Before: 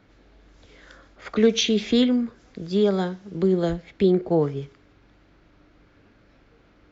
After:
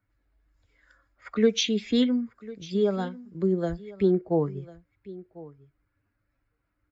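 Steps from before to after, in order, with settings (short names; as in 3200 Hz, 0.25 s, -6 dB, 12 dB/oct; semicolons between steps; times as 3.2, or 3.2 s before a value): per-bin expansion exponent 1.5; on a send: echo 1.047 s -19 dB; on the sum: gain -2 dB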